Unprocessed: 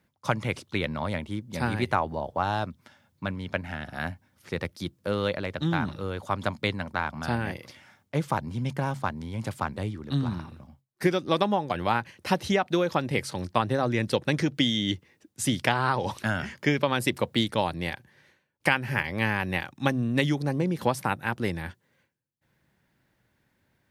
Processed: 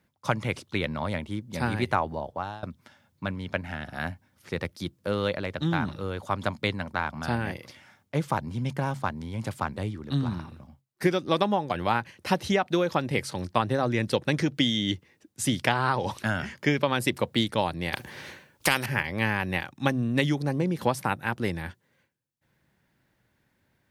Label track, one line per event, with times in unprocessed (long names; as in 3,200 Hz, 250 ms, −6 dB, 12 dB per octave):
1.930000	2.630000	fade out equal-power, to −20 dB
17.930000	18.860000	every bin compressed towards the loudest bin 2 to 1